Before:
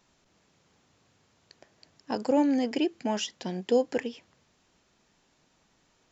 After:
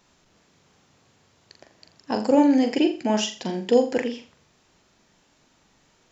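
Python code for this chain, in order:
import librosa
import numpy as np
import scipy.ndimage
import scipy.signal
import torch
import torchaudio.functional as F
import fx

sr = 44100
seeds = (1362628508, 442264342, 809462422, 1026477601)

y = fx.room_flutter(x, sr, wall_m=7.2, rt60_s=0.35)
y = y * 10.0 ** (5.0 / 20.0)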